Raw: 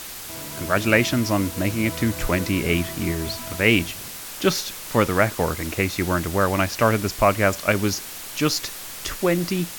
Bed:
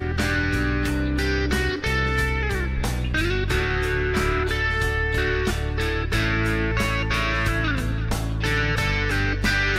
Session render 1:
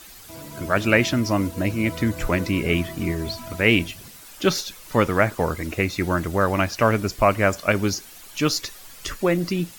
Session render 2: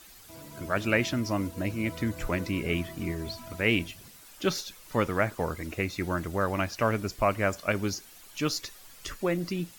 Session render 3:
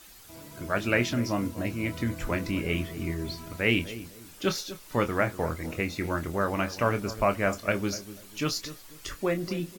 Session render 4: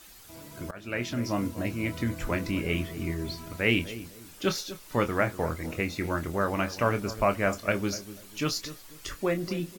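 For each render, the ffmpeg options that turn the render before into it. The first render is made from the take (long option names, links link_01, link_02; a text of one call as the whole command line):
ffmpeg -i in.wav -af "afftdn=noise_reduction=11:noise_floor=-36" out.wav
ffmpeg -i in.wav -af "volume=-7.5dB" out.wav
ffmpeg -i in.wav -filter_complex "[0:a]asplit=2[link_01][link_02];[link_02]adelay=25,volume=-9dB[link_03];[link_01][link_03]amix=inputs=2:normalize=0,asplit=2[link_04][link_05];[link_05]adelay=246,lowpass=frequency=900:poles=1,volume=-13dB,asplit=2[link_06][link_07];[link_07]adelay=246,lowpass=frequency=900:poles=1,volume=0.32,asplit=2[link_08][link_09];[link_09]adelay=246,lowpass=frequency=900:poles=1,volume=0.32[link_10];[link_04][link_06][link_08][link_10]amix=inputs=4:normalize=0" out.wav
ffmpeg -i in.wav -filter_complex "[0:a]asplit=2[link_01][link_02];[link_01]atrim=end=0.71,asetpts=PTS-STARTPTS,afade=type=out:start_time=0.706:duration=0.004:curve=hsin:silence=0.0841395[link_03];[link_02]atrim=start=0.71,asetpts=PTS-STARTPTS,afade=type=in:duration=0.67:silence=0.0841395[link_04];[link_03][link_04]concat=n=2:v=0:a=1" out.wav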